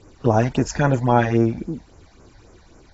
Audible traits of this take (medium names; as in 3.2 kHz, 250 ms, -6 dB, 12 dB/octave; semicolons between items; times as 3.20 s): phasing stages 8, 3.7 Hz, lowest notch 340–4000 Hz; AAC